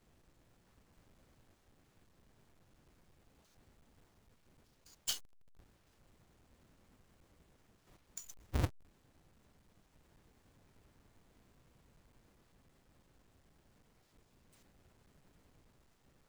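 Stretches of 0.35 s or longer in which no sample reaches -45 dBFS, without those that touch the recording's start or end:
5.18–8.17

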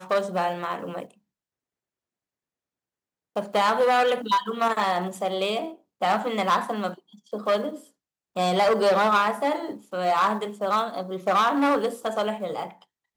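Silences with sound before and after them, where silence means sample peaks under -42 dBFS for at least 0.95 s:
1.11–3.36

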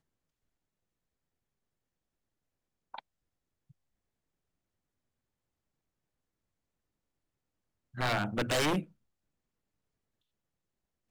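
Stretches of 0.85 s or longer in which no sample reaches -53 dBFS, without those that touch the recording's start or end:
3.71–7.94

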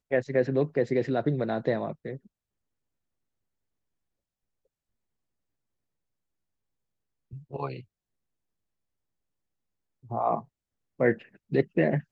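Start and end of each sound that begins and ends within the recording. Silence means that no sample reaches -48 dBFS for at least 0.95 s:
7.31–7.82

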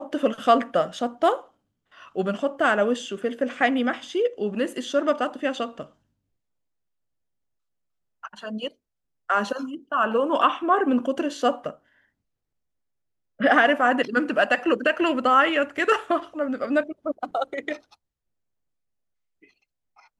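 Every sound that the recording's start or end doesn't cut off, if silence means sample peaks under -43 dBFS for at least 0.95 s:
8.23–11.75
13.39–17.94

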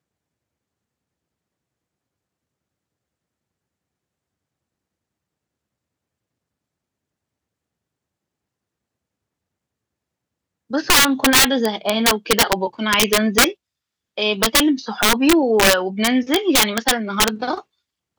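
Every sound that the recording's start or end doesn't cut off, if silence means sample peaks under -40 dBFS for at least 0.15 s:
10.7–13.54
14.18–17.61

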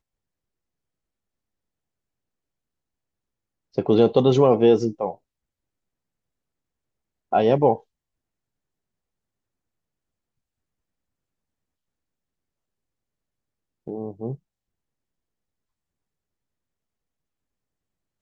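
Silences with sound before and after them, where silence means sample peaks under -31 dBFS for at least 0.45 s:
5.12–7.33
7.76–13.88

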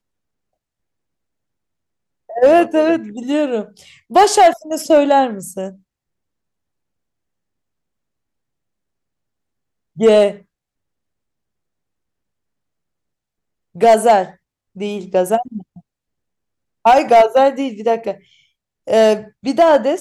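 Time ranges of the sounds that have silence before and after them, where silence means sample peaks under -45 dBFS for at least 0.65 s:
2.29–5.77
9.96–10.42
13.75–15.8

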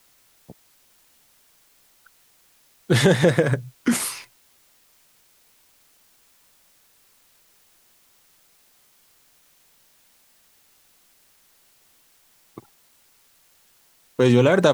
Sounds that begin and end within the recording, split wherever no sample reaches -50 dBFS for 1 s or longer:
2.06–4.27
12.57–12.69

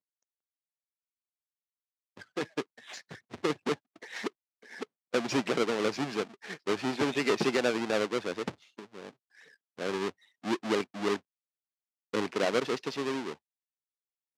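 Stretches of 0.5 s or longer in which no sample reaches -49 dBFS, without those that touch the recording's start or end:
11.19–12.13

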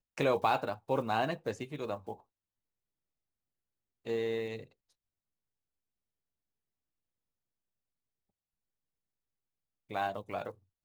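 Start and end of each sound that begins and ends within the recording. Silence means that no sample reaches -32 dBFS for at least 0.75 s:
4.07–4.56

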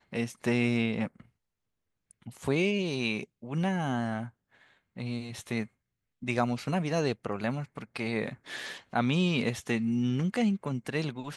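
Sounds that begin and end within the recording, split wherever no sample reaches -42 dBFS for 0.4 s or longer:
2.11–4.28
4.97–5.66

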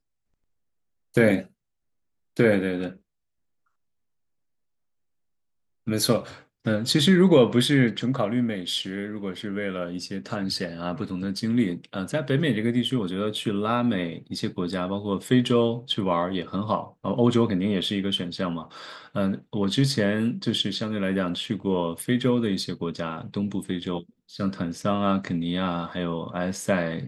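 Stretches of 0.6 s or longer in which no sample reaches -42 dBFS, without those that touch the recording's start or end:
1.46–2.37
2.96–5.87

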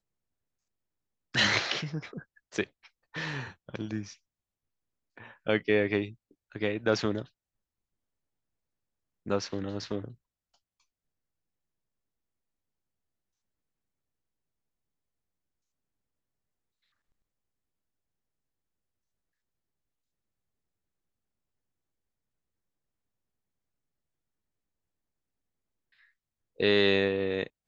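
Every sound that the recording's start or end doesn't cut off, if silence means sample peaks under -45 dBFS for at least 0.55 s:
1.34–4.14
5.18–7.26
9.26–10.12

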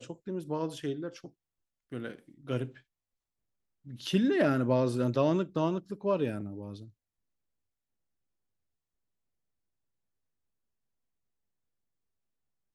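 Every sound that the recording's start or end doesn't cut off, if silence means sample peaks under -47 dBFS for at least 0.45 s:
1.92–2.78
3.86–6.88

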